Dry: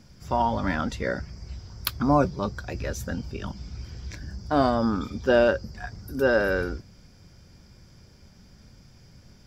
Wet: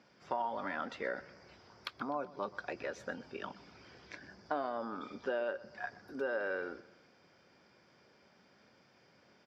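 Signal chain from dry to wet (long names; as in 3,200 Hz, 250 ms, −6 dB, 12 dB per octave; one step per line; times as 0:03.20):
downward compressor 16 to 1, threshold −28 dBFS, peak gain reduction 14 dB
band-pass filter 410–2,900 Hz
on a send: repeating echo 125 ms, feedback 48%, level −19 dB
on the sum: level −2 dB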